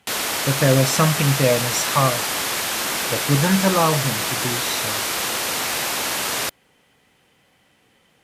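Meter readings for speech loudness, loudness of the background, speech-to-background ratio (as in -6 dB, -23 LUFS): -21.0 LUFS, -22.0 LUFS, 1.0 dB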